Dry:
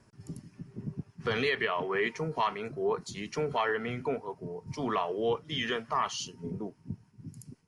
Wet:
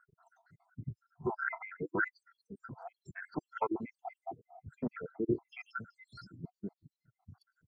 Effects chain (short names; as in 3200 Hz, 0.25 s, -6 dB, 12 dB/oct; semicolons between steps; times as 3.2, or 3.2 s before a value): random spectral dropouts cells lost 78%; formant shift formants -4 st; resonant high shelf 2100 Hz -11 dB, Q 3